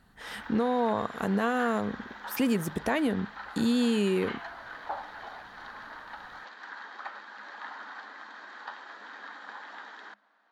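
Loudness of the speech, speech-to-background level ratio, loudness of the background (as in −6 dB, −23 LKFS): −29.0 LKFS, 13.5 dB, −42.5 LKFS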